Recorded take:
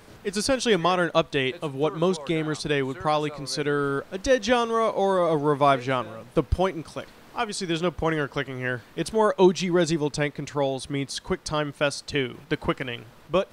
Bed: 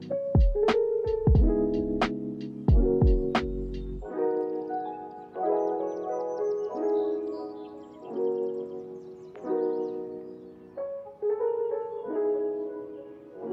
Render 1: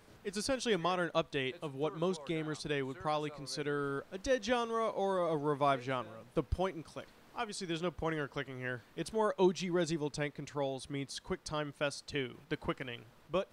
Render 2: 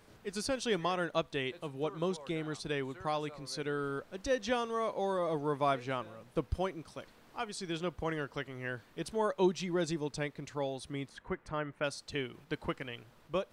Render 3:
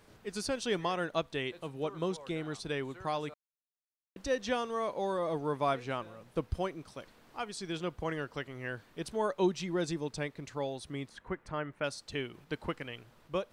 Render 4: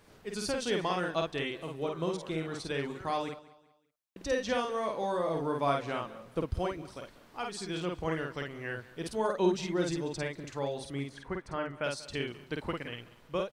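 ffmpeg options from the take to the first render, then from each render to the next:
-af "volume=-11dB"
-filter_complex "[0:a]asettb=1/sr,asplit=3[a][b][c];[a]atrim=end=11.094[d];[b]atrim=start=11.09:end=11.84,asetpts=PTS-STARTPTS,afade=t=in:d=0.004:c=qsin,afade=t=out:st=0.746:d=0.004:c=qsin,highshelf=f=3k:t=q:w=1.5:g=-13[e];[c]atrim=start=11.836[f];[d][e]acrossfade=d=0.004:c1=hsin:c2=qsin[g];[g][f]acrossfade=d=0.004:c1=qsin:c2=hsin"
-filter_complex "[0:a]asplit=3[a][b][c];[a]atrim=end=3.34,asetpts=PTS-STARTPTS,afade=t=out:st=3.336:d=0.004:c=hsin[d];[b]atrim=start=3.34:end=4.16,asetpts=PTS-STARTPTS,volume=0[e];[c]atrim=start=4.16,asetpts=PTS-STARTPTS,afade=t=in:d=0.004:c=hsin[f];[d][e][f]concat=n=3:v=0:a=1"
-filter_complex "[0:a]asplit=2[a][b];[b]adelay=50,volume=-3dB[c];[a][c]amix=inputs=2:normalize=0,aecho=1:1:190|380|570:0.106|0.0371|0.013"

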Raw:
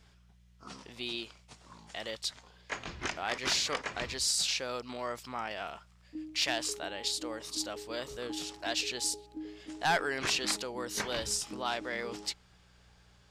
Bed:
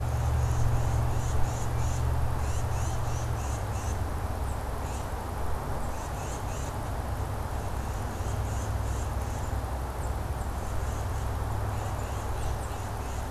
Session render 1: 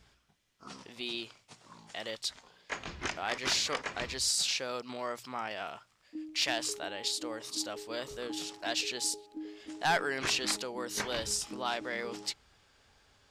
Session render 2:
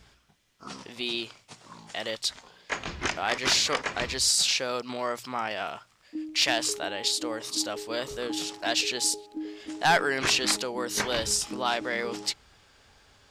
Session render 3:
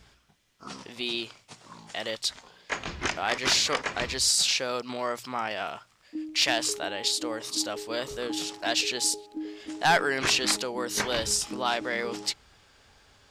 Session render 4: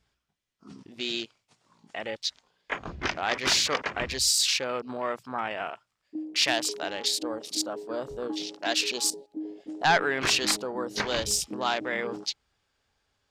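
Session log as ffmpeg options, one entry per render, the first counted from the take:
-af "bandreject=f=60:t=h:w=4,bandreject=f=120:t=h:w=4,bandreject=f=180:t=h:w=4"
-af "volume=6.5dB"
-af anull
-af "afwtdn=0.0158"

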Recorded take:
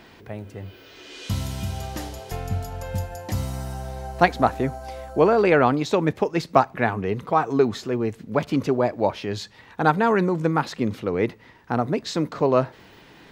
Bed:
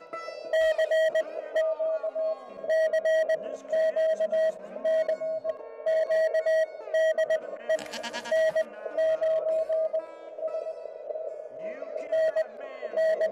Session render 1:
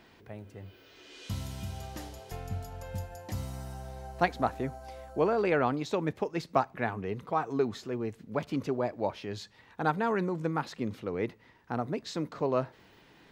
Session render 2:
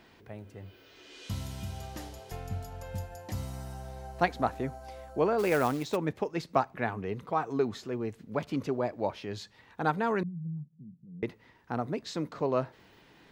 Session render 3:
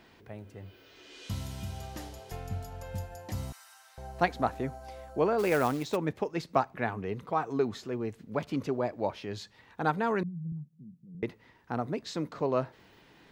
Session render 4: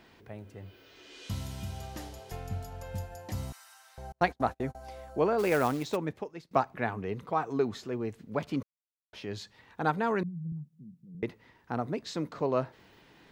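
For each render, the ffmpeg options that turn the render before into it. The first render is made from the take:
-af "volume=-9.5dB"
-filter_complex "[0:a]asplit=3[a][b][c];[a]afade=t=out:st=5.38:d=0.02[d];[b]acrusher=bits=4:mode=log:mix=0:aa=0.000001,afade=t=in:st=5.38:d=0.02,afade=t=out:st=5.95:d=0.02[e];[c]afade=t=in:st=5.95:d=0.02[f];[d][e][f]amix=inputs=3:normalize=0,asettb=1/sr,asplit=3[g][h][i];[g]atrim=end=10.234[j];[h]atrim=start=10.23:end=11.23,asetpts=PTS-STARTPTS,afade=t=in:d=0.004:c=qsin,afade=t=out:st=0.996:d=0.004:c=qsin,asuperpass=centerf=160:order=4:qfactor=3.4[k];[i]atrim=start=11.226[l];[j][k]acrossfade=d=0.004:c1=hsin:c2=qsin[m];[m][l]acrossfade=d=0.004:c1=qsin:c2=hsin"
-filter_complex "[0:a]asettb=1/sr,asplit=3[a][b][c];[a]atrim=end=3.524[d];[b]atrim=start=3.52:end=3.98,asetpts=PTS-STARTPTS,afade=t=in:d=0.004:c=qsin,afade=t=out:st=0.456:d=0.004:c=qsin,highpass=f=1.2k:w=0.5412,highpass=f=1.2k:w=1.3066[e];[c]atrim=start=3.976[f];[d][e]acrossfade=d=0.004:c1=hsin:c2=qsin[g];[g][f]acrossfade=d=0.004:c1=qsin:c2=hsin,asettb=1/sr,asplit=3[h][i][j];[h]atrim=end=10.524[k];[i]atrim=start=10.52:end=11.15,asetpts=PTS-STARTPTS,afade=t=in:d=0.004:c=qsin,afade=t=out:st=0.626:d=0.004:c=qsin,highpass=110[l];[j]atrim=start=11.146[m];[k][l]acrossfade=d=0.004:c1=hsin:c2=qsin[n];[n][m]acrossfade=d=0.004:c1=qsin:c2=hsin"
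-filter_complex "[0:a]asettb=1/sr,asplit=3[a][b][c];[a]atrim=end=4.124[d];[b]atrim=start=4.12:end=4.75,asetpts=PTS-STARTPTS,afade=t=in:d=0.004:c=qsin,afade=t=out:st=0.626:d=0.004:c=qsin,agate=range=-38dB:threshold=-39dB:ratio=16:release=100:detection=peak[e];[c]atrim=start=4.746[f];[d][e]acrossfade=d=0.004:c1=hsin:c2=qsin[g];[g][f]acrossfade=d=0.004:c1=qsin:c2=hsin,asplit=4[h][i][j][k];[h]atrim=end=6.51,asetpts=PTS-STARTPTS,afade=t=out:st=5.89:d=0.62:silence=0.0891251[l];[i]atrim=start=6.51:end=8.63,asetpts=PTS-STARTPTS,afade=t=in:d=0.004:c=hsin:silence=0.0891251,afade=t=out:st=2.116:d=0.004:c=hsin[m];[j]atrim=start=8.63:end=9.13,asetpts=PTS-STARTPTS,volume=0[n];[k]atrim=start=9.13,asetpts=PTS-STARTPTS,afade=t=in:d=0.004:c=hsin[o];[l][m][n][o]concat=n=4:v=0:a=1"

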